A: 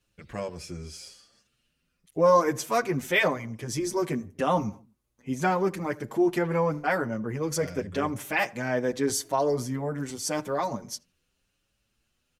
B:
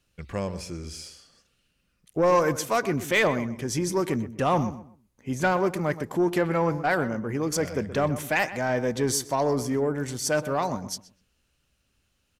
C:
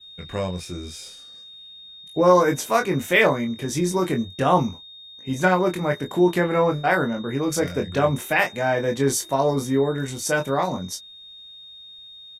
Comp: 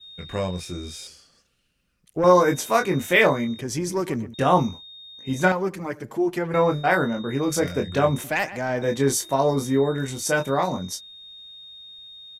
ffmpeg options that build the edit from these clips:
-filter_complex "[1:a]asplit=3[a][b][c];[2:a]asplit=5[d][e][f][g][h];[d]atrim=end=1.072[i];[a]atrim=start=1.068:end=2.242[j];[e]atrim=start=2.238:end=3.612[k];[b]atrim=start=3.608:end=4.342[l];[f]atrim=start=4.338:end=5.522[m];[0:a]atrim=start=5.518:end=6.542[n];[g]atrim=start=6.538:end=8.242[o];[c]atrim=start=8.238:end=8.822[p];[h]atrim=start=8.818[q];[i][j]acrossfade=d=0.004:c1=hsin:c2=hsin[r];[r][k]acrossfade=d=0.004:c1=hsin:c2=hsin[s];[s][l]acrossfade=d=0.004:c1=hsin:c2=hsin[t];[t][m]acrossfade=d=0.004:c1=hsin:c2=hsin[u];[u][n]acrossfade=d=0.004:c1=hsin:c2=hsin[v];[v][o]acrossfade=d=0.004:c1=hsin:c2=hsin[w];[w][p]acrossfade=d=0.004:c1=hsin:c2=hsin[x];[x][q]acrossfade=d=0.004:c1=hsin:c2=hsin"

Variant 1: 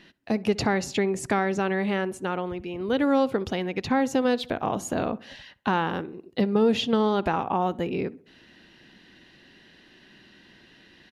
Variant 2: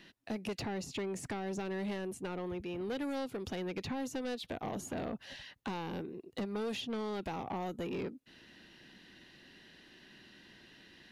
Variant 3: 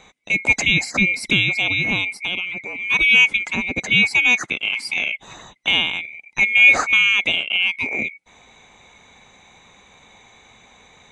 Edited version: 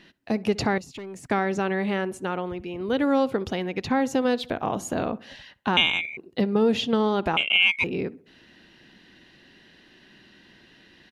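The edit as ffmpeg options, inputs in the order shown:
-filter_complex "[2:a]asplit=2[a][b];[0:a]asplit=4[c][d][e][f];[c]atrim=end=0.782[g];[1:a]atrim=start=0.778:end=1.312[h];[d]atrim=start=1.308:end=5.772[i];[a]atrim=start=5.768:end=6.172[j];[e]atrim=start=6.168:end=7.372[k];[b]atrim=start=7.368:end=7.842[l];[f]atrim=start=7.838[m];[g][h]acrossfade=d=0.004:c1=hsin:c2=hsin[n];[n][i]acrossfade=d=0.004:c1=hsin:c2=hsin[o];[o][j]acrossfade=d=0.004:c1=hsin:c2=hsin[p];[p][k]acrossfade=d=0.004:c1=hsin:c2=hsin[q];[q][l]acrossfade=d=0.004:c1=hsin:c2=hsin[r];[r][m]acrossfade=d=0.004:c1=hsin:c2=hsin"

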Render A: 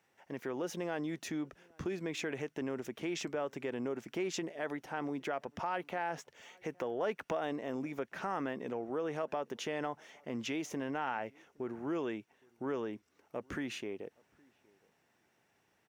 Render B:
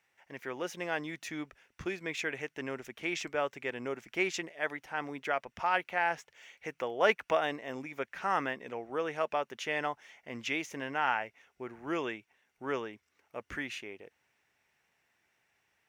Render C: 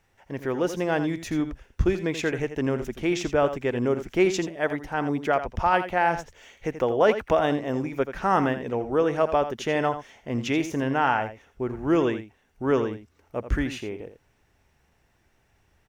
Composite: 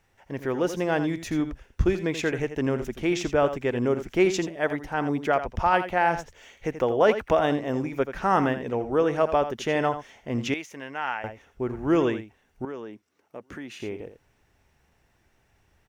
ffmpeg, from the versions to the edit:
-filter_complex "[2:a]asplit=3[a][b][c];[a]atrim=end=10.542[d];[1:a]atrim=start=10.538:end=11.242[e];[b]atrim=start=11.238:end=12.652[f];[0:a]atrim=start=12.648:end=13.802[g];[c]atrim=start=13.798[h];[d][e]acrossfade=d=0.004:c1=hsin:c2=hsin[i];[i][f]acrossfade=d=0.004:c1=hsin:c2=hsin[j];[j][g]acrossfade=d=0.004:c1=hsin:c2=hsin[k];[k][h]acrossfade=d=0.004:c1=hsin:c2=hsin"

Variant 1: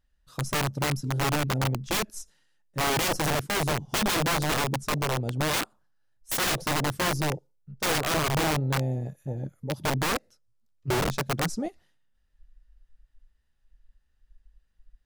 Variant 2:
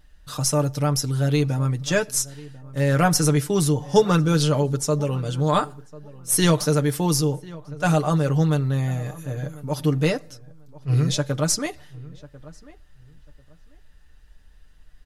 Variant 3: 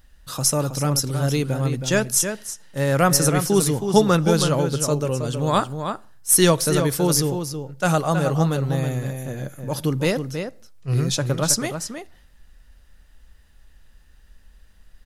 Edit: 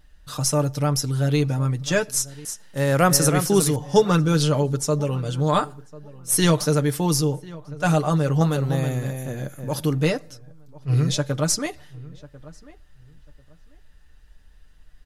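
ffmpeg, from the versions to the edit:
-filter_complex "[2:a]asplit=2[a][b];[1:a]asplit=3[c][d][e];[c]atrim=end=2.452[f];[a]atrim=start=2.448:end=3.762[g];[d]atrim=start=3.758:end=8.412[h];[b]atrim=start=8.408:end=9.942[i];[e]atrim=start=9.938[j];[f][g]acrossfade=d=0.004:c1=hsin:c2=hsin[k];[k][h]acrossfade=d=0.004:c1=hsin:c2=hsin[l];[l][i]acrossfade=d=0.004:c1=hsin:c2=hsin[m];[m][j]acrossfade=d=0.004:c1=hsin:c2=hsin"

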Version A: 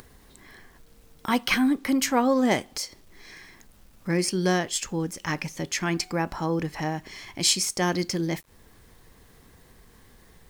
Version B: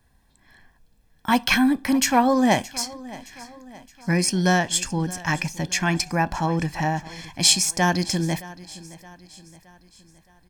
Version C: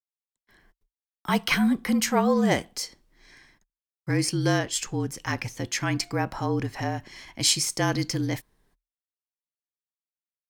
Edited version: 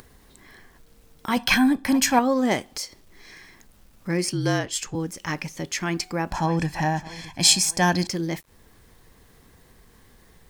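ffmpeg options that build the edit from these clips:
-filter_complex "[1:a]asplit=2[a][b];[0:a]asplit=4[c][d][e][f];[c]atrim=end=1.372[g];[a]atrim=start=1.368:end=2.192[h];[d]atrim=start=2.188:end=4.332[i];[2:a]atrim=start=4.328:end=4.952[j];[e]atrim=start=4.948:end=6.312[k];[b]atrim=start=6.308:end=8.072[l];[f]atrim=start=8.068[m];[g][h]acrossfade=d=0.004:c1=hsin:c2=hsin[n];[n][i]acrossfade=d=0.004:c1=hsin:c2=hsin[o];[o][j]acrossfade=d=0.004:c1=hsin:c2=hsin[p];[p][k]acrossfade=d=0.004:c1=hsin:c2=hsin[q];[q][l]acrossfade=d=0.004:c1=hsin:c2=hsin[r];[r][m]acrossfade=d=0.004:c1=hsin:c2=hsin"

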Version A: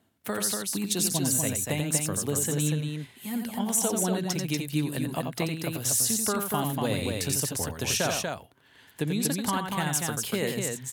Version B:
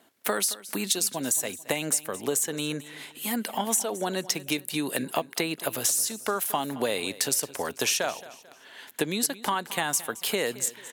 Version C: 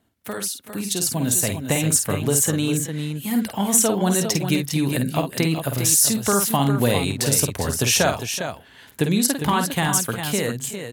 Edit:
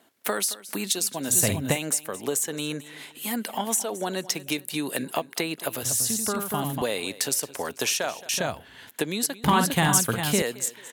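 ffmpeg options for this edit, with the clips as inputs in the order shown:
-filter_complex "[2:a]asplit=3[a][b][c];[1:a]asplit=5[d][e][f][g][h];[d]atrim=end=1.38[i];[a]atrim=start=1.28:end=1.79[j];[e]atrim=start=1.69:end=5.832[k];[0:a]atrim=start=5.828:end=6.822[l];[f]atrim=start=6.818:end=8.292[m];[b]atrim=start=8.288:end=8.892[n];[g]atrim=start=8.888:end=9.442[o];[c]atrim=start=9.438:end=10.422[p];[h]atrim=start=10.418[q];[i][j]acrossfade=d=0.1:c1=tri:c2=tri[r];[r][k]acrossfade=d=0.1:c1=tri:c2=tri[s];[s][l]acrossfade=d=0.004:c1=hsin:c2=hsin[t];[t][m]acrossfade=d=0.004:c1=hsin:c2=hsin[u];[u][n]acrossfade=d=0.004:c1=hsin:c2=hsin[v];[v][o]acrossfade=d=0.004:c1=hsin:c2=hsin[w];[w][p]acrossfade=d=0.004:c1=hsin:c2=hsin[x];[x][q]acrossfade=d=0.004:c1=hsin:c2=hsin"

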